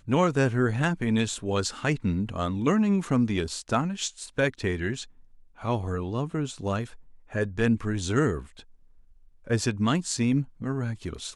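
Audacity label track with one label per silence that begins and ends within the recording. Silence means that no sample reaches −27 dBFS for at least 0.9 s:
8.390000	9.500000	silence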